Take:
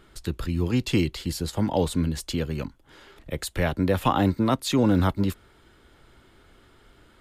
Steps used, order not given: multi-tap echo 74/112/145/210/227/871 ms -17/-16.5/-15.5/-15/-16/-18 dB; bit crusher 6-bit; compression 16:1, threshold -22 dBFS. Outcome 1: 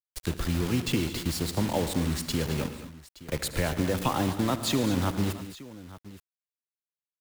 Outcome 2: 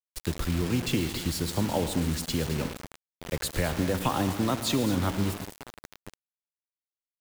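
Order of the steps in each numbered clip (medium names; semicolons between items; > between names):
compression > bit crusher > multi-tap echo; compression > multi-tap echo > bit crusher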